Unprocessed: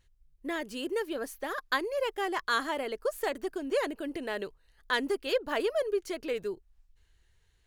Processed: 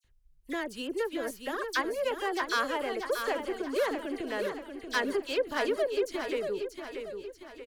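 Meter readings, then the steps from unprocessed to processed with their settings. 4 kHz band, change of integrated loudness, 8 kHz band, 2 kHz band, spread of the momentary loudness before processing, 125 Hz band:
0.0 dB, +0.5 dB, +2.0 dB, +0.5 dB, 7 LU, no reading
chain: self-modulated delay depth 0.061 ms; phase dispersion lows, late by 46 ms, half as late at 2.8 kHz; on a send: feedback delay 634 ms, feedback 46%, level -7 dB

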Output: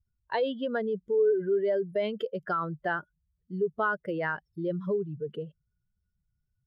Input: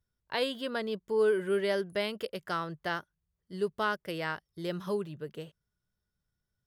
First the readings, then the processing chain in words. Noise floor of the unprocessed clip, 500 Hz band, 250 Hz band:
under -85 dBFS, +3.5 dB, +3.0 dB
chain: spectral contrast enhancement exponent 2; in parallel at 0 dB: compression, threshold -35 dBFS, peak gain reduction 11.5 dB

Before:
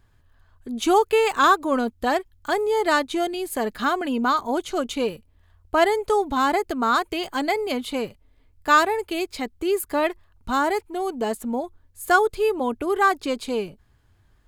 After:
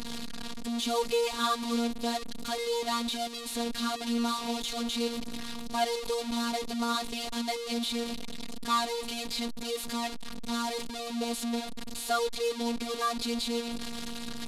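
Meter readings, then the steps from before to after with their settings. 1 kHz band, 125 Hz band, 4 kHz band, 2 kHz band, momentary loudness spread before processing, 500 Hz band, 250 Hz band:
-11.5 dB, no reading, 0.0 dB, -14.0 dB, 11 LU, -10.5 dB, -5.5 dB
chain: one-bit delta coder 64 kbps, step -20.5 dBFS; robot voice 234 Hz; fifteen-band graphic EQ 250 Hz +5 dB, 1.6 kHz -5 dB, 4 kHz +9 dB; trim -8.5 dB

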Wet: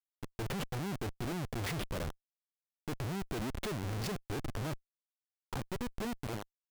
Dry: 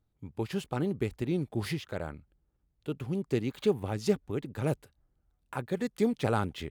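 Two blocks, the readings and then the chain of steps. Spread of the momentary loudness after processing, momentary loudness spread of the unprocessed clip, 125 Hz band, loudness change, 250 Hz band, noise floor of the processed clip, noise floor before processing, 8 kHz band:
7 LU, 11 LU, -4.5 dB, -7.0 dB, -8.0 dB, under -85 dBFS, -76 dBFS, +1.5 dB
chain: fade out at the end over 1.60 s; Schmitt trigger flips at -39.5 dBFS; trim -2 dB

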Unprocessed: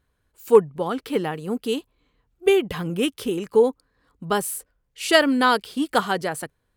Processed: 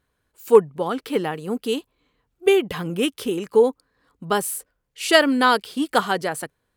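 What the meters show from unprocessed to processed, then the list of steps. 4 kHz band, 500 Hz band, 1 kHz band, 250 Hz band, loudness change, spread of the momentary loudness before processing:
+1.5 dB, +1.0 dB, +1.5 dB, +0.5 dB, +1.0 dB, 12 LU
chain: bass shelf 100 Hz -9 dB; trim +1.5 dB

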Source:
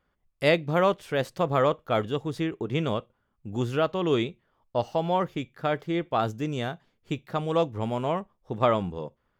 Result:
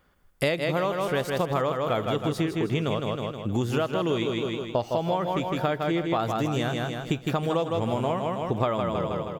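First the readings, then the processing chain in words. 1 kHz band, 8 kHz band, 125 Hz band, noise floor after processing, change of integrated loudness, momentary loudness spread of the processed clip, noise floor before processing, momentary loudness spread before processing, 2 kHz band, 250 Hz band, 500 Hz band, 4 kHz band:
+0.5 dB, no reading, +2.5 dB, -45 dBFS, +0.5 dB, 3 LU, -75 dBFS, 10 LU, +0.5 dB, +2.0 dB, 0.0 dB, +2.0 dB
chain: treble shelf 7.2 kHz +8 dB; on a send: feedback delay 158 ms, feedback 46%, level -6 dB; on the sum: compression 10:1, threshold -31 dBFS, peak gain reduction 15 dB; trim +9 dB

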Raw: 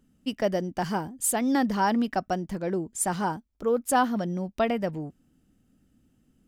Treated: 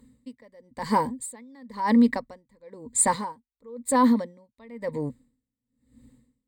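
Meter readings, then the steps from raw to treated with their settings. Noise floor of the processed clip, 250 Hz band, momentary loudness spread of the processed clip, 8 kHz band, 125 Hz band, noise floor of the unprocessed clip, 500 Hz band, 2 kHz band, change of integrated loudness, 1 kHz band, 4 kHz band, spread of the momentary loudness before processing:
under -85 dBFS, +3.0 dB, 17 LU, +3.0 dB, -4.5 dB, -68 dBFS, -3.5 dB, -3.0 dB, +2.5 dB, 0.0 dB, -4.0 dB, 8 LU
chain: rippled EQ curve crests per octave 0.99, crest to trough 17 dB; peak limiter -16.5 dBFS, peak gain reduction 9 dB; logarithmic tremolo 0.99 Hz, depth 33 dB; trim +6 dB

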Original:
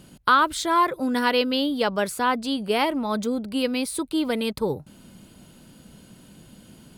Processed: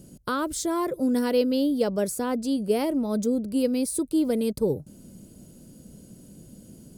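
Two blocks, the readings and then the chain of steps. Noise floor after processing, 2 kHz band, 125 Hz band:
-50 dBFS, -12.5 dB, +1.5 dB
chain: high-order bell 1.8 kHz -14 dB 2.7 oct; trim +1.5 dB

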